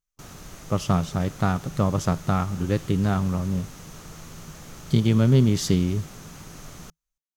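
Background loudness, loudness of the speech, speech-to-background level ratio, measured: -42.5 LUFS, -23.5 LUFS, 19.0 dB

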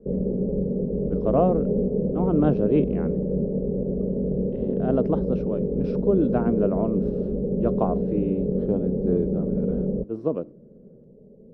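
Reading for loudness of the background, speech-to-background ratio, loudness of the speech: -26.0 LUFS, -1.0 dB, -27.0 LUFS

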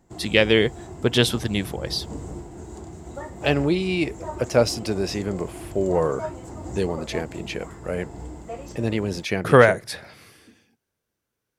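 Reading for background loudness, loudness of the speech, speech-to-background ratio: -37.5 LUFS, -23.0 LUFS, 14.5 dB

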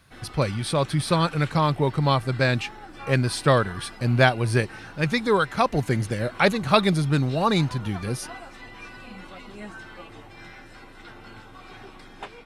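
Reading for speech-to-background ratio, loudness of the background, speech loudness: 19.5 dB, -42.5 LUFS, -23.0 LUFS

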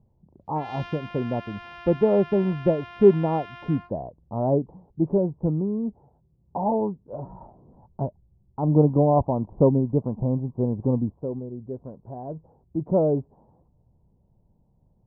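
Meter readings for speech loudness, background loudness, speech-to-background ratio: -24.5 LUFS, -42.0 LUFS, 17.5 dB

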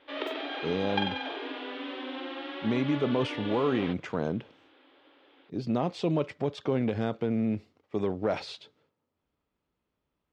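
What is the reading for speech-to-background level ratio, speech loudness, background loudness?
5.0 dB, -31.0 LUFS, -36.0 LUFS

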